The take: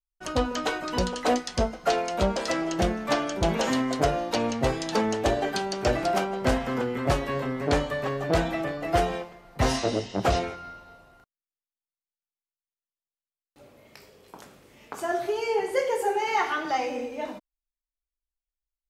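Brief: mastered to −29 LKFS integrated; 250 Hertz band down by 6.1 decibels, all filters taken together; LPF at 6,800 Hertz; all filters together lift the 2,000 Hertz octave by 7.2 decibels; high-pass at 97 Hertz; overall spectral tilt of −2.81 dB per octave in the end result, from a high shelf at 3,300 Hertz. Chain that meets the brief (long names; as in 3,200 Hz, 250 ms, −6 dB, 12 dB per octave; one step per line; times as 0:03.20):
high-pass filter 97 Hz
low-pass filter 6,800 Hz
parametric band 250 Hz −8 dB
parametric band 2,000 Hz +6.5 dB
high-shelf EQ 3,300 Hz +8.5 dB
level −3.5 dB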